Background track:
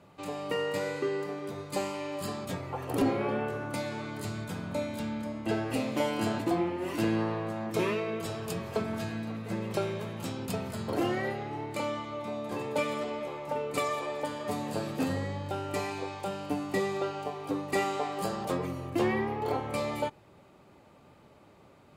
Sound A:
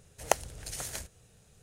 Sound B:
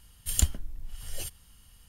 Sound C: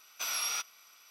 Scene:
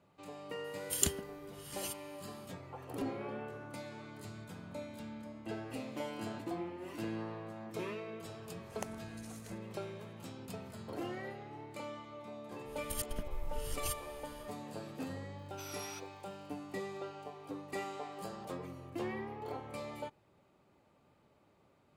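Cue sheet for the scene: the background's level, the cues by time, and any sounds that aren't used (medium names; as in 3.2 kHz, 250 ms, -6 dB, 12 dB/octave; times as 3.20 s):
background track -11.5 dB
0.64 s: add B -2 dB + Chebyshev high-pass 170 Hz
8.51 s: add A -17 dB
12.64 s: add B -3.5 dB, fades 0.10 s + compressor with a negative ratio -34 dBFS, ratio -0.5
15.38 s: add C -14.5 dB + small samples zeroed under -51.5 dBFS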